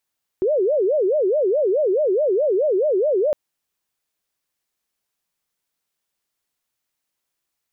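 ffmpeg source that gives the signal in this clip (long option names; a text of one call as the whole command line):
ffmpeg -f lavfi -i "aevalsrc='0.168*sin(2*PI*(492*t-128/(2*PI*4.7)*sin(2*PI*4.7*t)))':duration=2.91:sample_rate=44100" out.wav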